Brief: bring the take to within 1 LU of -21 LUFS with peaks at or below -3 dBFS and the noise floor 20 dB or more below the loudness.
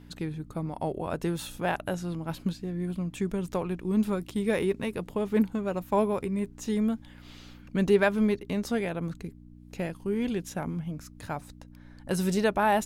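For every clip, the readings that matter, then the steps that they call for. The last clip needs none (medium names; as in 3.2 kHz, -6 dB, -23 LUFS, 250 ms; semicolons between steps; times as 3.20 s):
hum 60 Hz; highest harmonic 300 Hz; hum level -49 dBFS; loudness -30.0 LUFS; peak level -10.5 dBFS; loudness target -21.0 LUFS
-> de-hum 60 Hz, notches 5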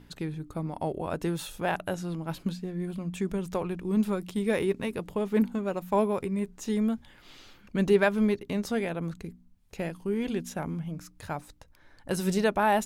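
hum not found; loudness -30.0 LUFS; peak level -10.0 dBFS; loudness target -21.0 LUFS
-> trim +9 dB; peak limiter -3 dBFS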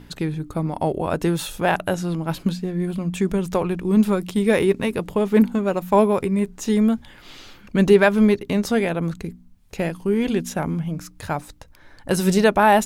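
loudness -21.0 LUFS; peak level -3.0 dBFS; noise floor -48 dBFS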